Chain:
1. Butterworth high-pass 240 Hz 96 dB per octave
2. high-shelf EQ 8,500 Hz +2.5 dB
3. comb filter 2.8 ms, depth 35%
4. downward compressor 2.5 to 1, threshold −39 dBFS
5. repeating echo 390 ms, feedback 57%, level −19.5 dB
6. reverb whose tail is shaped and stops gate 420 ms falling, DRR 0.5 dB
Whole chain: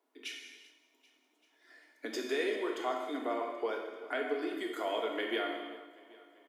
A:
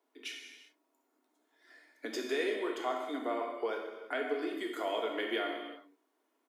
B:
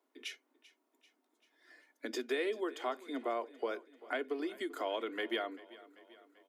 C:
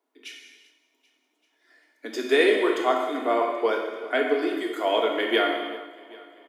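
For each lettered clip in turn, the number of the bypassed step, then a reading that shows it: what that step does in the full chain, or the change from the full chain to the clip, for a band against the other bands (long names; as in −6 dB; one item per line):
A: 5, change in momentary loudness spread −2 LU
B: 6, change in crest factor +2.5 dB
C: 4, average gain reduction 9.0 dB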